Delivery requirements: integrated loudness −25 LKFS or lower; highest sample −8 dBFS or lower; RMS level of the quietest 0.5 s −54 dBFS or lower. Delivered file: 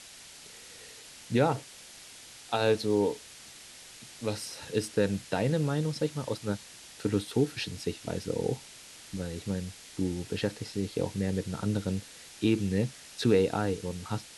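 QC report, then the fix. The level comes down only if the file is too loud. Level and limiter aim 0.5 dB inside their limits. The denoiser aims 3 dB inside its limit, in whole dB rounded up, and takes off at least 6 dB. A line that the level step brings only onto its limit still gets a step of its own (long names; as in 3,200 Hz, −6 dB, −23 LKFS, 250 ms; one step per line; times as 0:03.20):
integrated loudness −31.0 LKFS: in spec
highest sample −12.0 dBFS: in spec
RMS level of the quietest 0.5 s −50 dBFS: out of spec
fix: broadband denoise 7 dB, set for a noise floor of −50 dBFS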